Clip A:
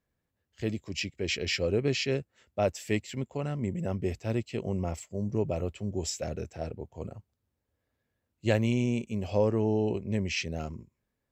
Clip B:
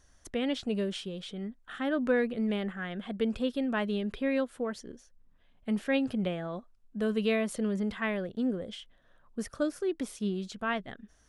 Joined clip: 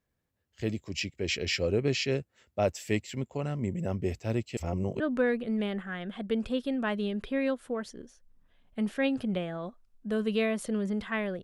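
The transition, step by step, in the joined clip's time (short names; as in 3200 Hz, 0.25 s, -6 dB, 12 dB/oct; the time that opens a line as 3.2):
clip A
4.57–5 reverse
5 switch to clip B from 1.9 s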